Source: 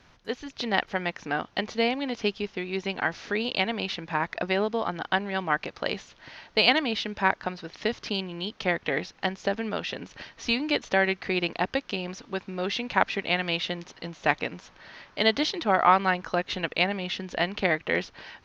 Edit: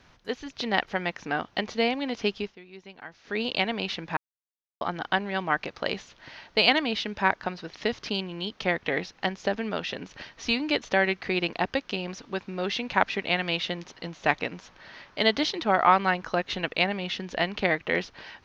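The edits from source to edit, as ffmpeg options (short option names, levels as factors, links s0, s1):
-filter_complex "[0:a]asplit=5[s0][s1][s2][s3][s4];[s0]atrim=end=2.56,asetpts=PTS-STARTPTS,afade=t=out:st=2.41:d=0.15:silence=0.16788[s5];[s1]atrim=start=2.56:end=3.24,asetpts=PTS-STARTPTS,volume=0.168[s6];[s2]atrim=start=3.24:end=4.17,asetpts=PTS-STARTPTS,afade=t=in:d=0.15:silence=0.16788,afade=t=out:st=0.926:d=0.004:c=hsin[s7];[s3]atrim=start=4.17:end=4.81,asetpts=PTS-STARTPTS,volume=0[s8];[s4]atrim=start=4.81,asetpts=PTS-STARTPTS,afade=t=in:d=0.004:c=hsin[s9];[s5][s6][s7][s8][s9]concat=n=5:v=0:a=1"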